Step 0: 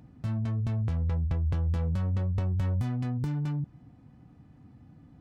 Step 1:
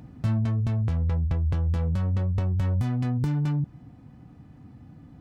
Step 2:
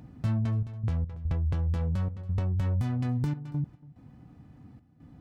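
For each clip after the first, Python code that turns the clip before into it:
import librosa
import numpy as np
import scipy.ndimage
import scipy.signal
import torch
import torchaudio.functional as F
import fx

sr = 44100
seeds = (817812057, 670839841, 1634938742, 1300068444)

y1 = fx.rider(x, sr, range_db=10, speed_s=0.5)
y1 = y1 * 10.0 ** (4.0 / 20.0)
y2 = fx.step_gate(y1, sr, bpm=72, pattern='xxx.x.xxxx.xx', floor_db=-12.0, edge_ms=4.5)
y2 = y2 + 10.0 ** (-21.0 / 20.0) * np.pad(y2, (int(282 * sr / 1000.0), 0))[:len(y2)]
y2 = y2 * 10.0 ** (-3.0 / 20.0)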